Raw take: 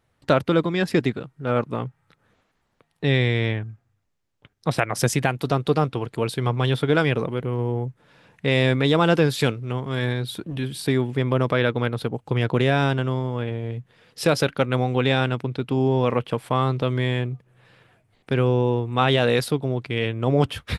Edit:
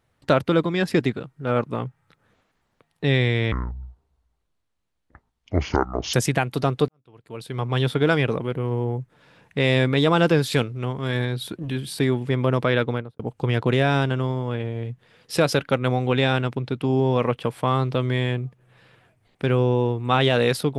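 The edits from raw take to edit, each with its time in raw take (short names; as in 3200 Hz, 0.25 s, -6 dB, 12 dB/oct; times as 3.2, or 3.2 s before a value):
3.52–5.01 speed 57%
5.76–6.67 fade in quadratic
11.72–12.07 studio fade out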